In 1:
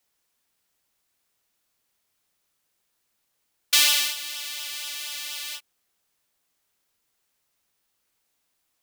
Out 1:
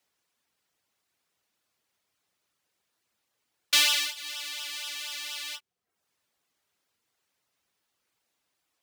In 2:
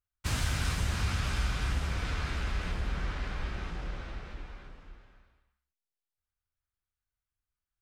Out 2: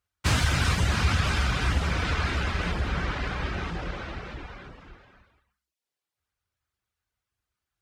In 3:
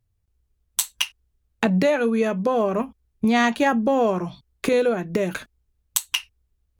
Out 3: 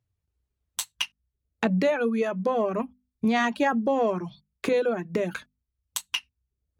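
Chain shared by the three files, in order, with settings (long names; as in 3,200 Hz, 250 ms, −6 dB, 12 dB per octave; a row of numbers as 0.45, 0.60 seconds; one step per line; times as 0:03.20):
soft clipping −6 dBFS
reverb reduction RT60 0.57 s
high-pass filter 65 Hz
high-shelf EQ 8,100 Hz −9.5 dB
mains-hum notches 50/100/150/200/250 Hz
loudness normalisation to −27 LKFS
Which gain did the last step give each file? +1.0, +11.0, −3.0 decibels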